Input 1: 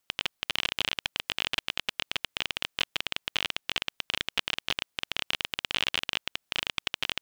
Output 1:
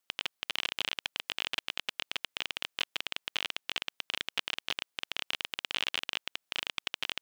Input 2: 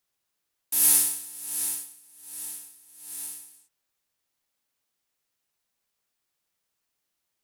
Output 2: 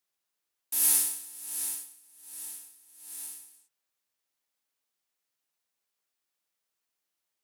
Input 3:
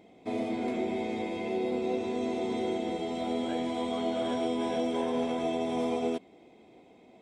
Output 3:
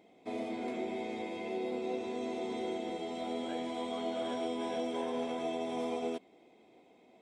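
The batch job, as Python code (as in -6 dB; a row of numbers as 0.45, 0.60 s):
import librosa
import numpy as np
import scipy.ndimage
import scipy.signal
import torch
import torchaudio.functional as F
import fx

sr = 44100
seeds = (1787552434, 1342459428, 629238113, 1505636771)

y = fx.low_shelf(x, sr, hz=150.0, db=-11.5)
y = F.gain(torch.from_numpy(y), -4.0).numpy()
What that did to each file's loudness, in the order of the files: -4.0, -4.0, -5.5 LU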